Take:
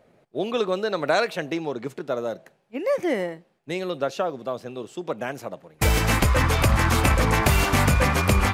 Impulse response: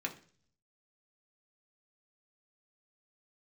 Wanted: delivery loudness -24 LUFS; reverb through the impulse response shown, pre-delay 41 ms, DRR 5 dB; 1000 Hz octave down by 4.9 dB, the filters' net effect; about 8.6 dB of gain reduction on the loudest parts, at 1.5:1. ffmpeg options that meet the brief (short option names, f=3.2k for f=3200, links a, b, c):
-filter_complex "[0:a]equalizer=f=1k:t=o:g=-6.5,acompressor=threshold=-40dB:ratio=1.5,asplit=2[a][b];[1:a]atrim=start_sample=2205,adelay=41[c];[b][c]afir=irnorm=-1:irlink=0,volume=-7.5dB[d];[a][d]amix=inputs=2:normalize=0,volume=7.5dB"